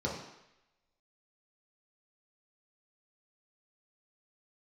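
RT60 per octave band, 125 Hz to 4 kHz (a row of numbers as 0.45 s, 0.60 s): 0.70 s, 0.75 s, 0.85 s, 0.90 s, 1.0 s, 0.95 s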